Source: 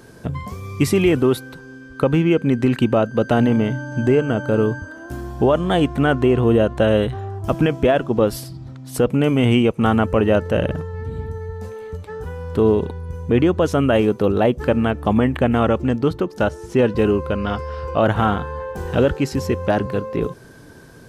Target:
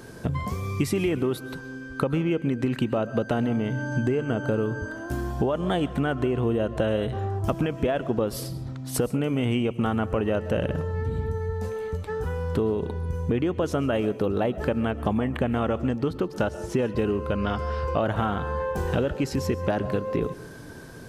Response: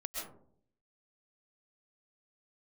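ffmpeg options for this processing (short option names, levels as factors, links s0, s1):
-filter_complex "[0:a]acompressor=threshold=0.0708:ratio=6,asplit=2[s0][s1];[1:a]atrim=start_sample=2205[s2];[s1][s2]afir=irnorm=-1:irlink=0,volume=0.211[s3];[s0][s3]amix=inputs=2:normalize=0"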